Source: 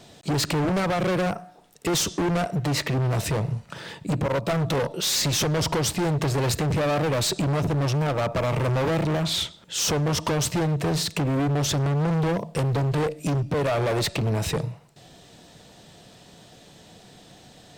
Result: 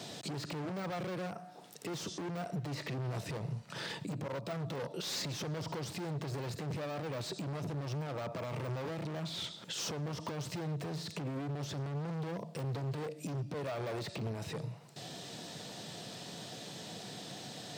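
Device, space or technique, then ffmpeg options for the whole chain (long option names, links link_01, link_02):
broadcast voice chain: -af "highpass=frequency=110:width=0.5412,highpass=frequency=110:width=1.3066,deesser=0.8,acompressor=threshold=-42dB:ratio=3,equalizer=frequency=4800:width_type=o:width=0.87:gain=4,alimiter=level_in=9.5dB:limit=-24dB:level=0:latency=1:release=22,volume=-9.5dB,volume=3dB"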